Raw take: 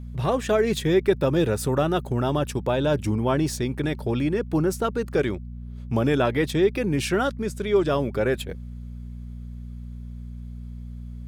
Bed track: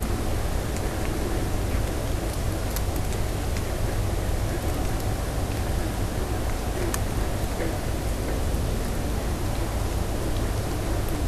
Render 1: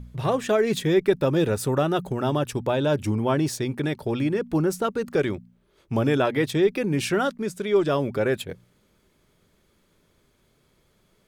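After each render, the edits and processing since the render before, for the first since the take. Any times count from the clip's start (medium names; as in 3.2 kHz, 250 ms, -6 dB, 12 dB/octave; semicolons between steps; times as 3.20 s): de-hum 60 Hz, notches 4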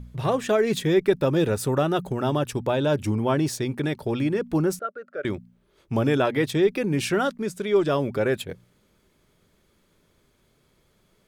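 4.79–5.25 s: two resonant band-passes 920 Hz, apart 1.2 oct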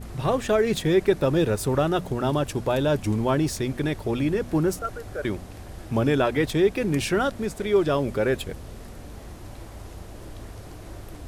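add bed track -13.5 dB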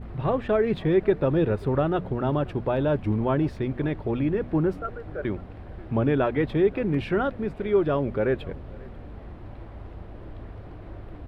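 distance through air 450 m; echo from a far wall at 92 m, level -22 dB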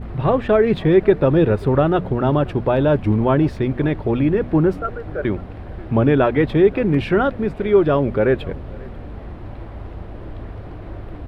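trim +7.5 dB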